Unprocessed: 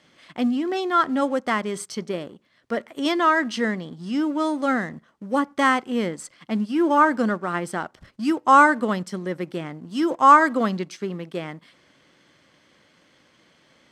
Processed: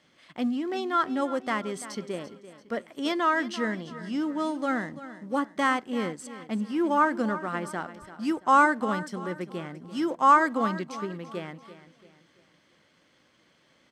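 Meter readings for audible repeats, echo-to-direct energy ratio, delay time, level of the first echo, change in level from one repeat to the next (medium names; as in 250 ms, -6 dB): 3, -13.5 dB, 339 ms, -14.5 dB, -7.5 dB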